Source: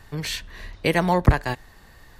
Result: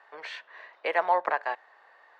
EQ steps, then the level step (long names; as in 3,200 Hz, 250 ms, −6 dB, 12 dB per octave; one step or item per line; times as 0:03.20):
high-pass filter 580 Hz 24 dB per octave
low-pass filter 1,700 Hz 12 dB per octave
0.0 dB